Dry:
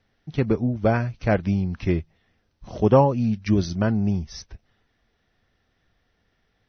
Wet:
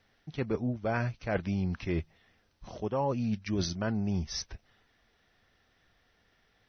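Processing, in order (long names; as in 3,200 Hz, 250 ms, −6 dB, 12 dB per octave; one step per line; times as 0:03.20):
low-shelf EQ 440 Hz −6.5 dB
reversed playback
downward compressor 12 to 1, threshold −30 dBFS, peak gain reduction 17 dB
reversed playback
level +3 dB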